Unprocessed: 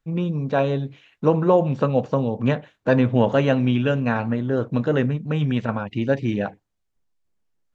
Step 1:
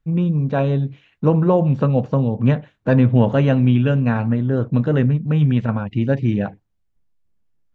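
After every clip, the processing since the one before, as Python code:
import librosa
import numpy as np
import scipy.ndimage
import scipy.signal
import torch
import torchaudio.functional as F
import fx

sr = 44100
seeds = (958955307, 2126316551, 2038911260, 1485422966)

y = fx.bass_treble(x, sr, bass_db=9, treble_db=-5)
y = y * librosa.db_to_amplitude(-1.0)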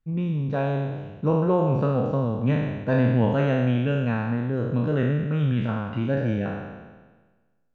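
y = fx.spec_trails(x, sr, decay_s=1.37)
y = y * librosa.db_to_amplitude(-8.0)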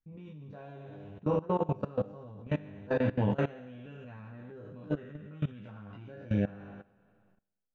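y = fx.room_early_taps(x, sr, ms=(10, 20), db=(-6.0, -3.0))
y = fx.level_steps(y, sr, step_db=20)
y = y * librosa.db_to_amplitude(-6.5)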